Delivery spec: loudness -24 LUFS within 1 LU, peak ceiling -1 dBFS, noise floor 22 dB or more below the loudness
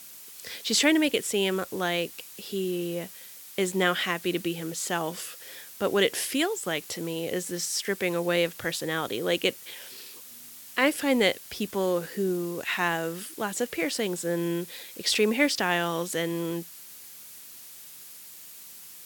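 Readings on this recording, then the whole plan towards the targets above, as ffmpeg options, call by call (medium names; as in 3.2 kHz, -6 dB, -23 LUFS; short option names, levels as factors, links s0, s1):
noise floor -46 dBFS; noise floor target -50 dBFS; loudness -27.5 LUFS; peak level -8.5 dBFS; loudness target -24.0 LUFS
-> -af "afftdn=nr=6:nf=-46"
-af "volume=1.5"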